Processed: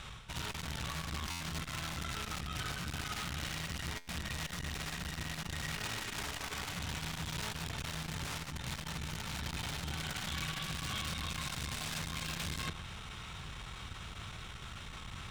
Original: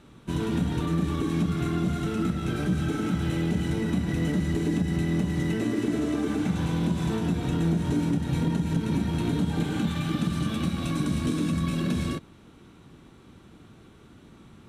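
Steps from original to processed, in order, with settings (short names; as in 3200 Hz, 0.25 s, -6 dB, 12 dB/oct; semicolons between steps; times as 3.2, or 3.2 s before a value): median filter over 3 samples; in parallel at -5.5 dB: wrapped overs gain 23.5 dB; on the sum: high shelf 9800 Hz -10 dB; reverse; compressor 16:1, threshold -37 dBFS, peak gain reduction 17 dB; reverse; passive tone stack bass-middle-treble 10-0-10; darkening echo 0.114 s, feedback 69%, level -15 dB; speed mistake 25 fps video run at 24 fps; stuck buffer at 1.3/3.97, samples 512, times 8; core saturation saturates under 410 Hz; gain +15.5 dB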